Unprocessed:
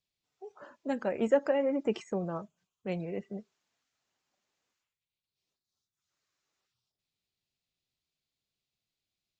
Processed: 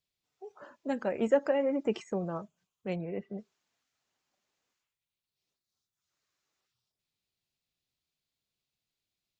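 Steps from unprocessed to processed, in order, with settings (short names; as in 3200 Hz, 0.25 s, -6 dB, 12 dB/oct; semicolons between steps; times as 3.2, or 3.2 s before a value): 2.95–3.37 LPF 2000 Hz -> 4300 Hz 12 dB/oct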